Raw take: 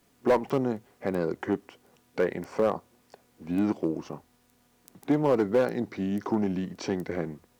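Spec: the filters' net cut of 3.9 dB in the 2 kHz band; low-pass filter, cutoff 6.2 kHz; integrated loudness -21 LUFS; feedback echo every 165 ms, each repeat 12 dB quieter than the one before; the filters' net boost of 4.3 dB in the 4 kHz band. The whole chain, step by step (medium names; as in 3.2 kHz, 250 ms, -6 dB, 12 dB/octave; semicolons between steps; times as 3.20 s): low-pass 6.2 kHz; peaking EQ 2 kHz -7 dB; peaking EQ 4 kHz +8.5 dB; feedback delay 165 ms, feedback 25%, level -12 dB; trim +7.5 dB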